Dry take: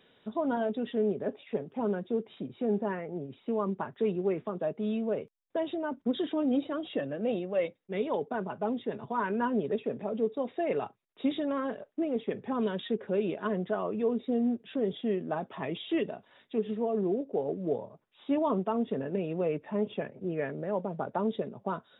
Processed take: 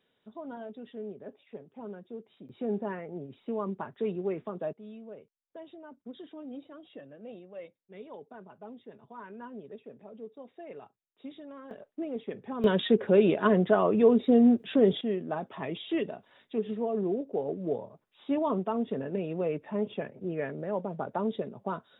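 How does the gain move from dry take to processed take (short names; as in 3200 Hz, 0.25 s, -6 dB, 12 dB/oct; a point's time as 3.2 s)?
-11.5 dB
from 2.49 s -2.5 dB
from 4.73 s -14.5 dB
from 11.71 s -4.5 dB
from 12.64 s +8 dB
from 15.01 s -0.5 dB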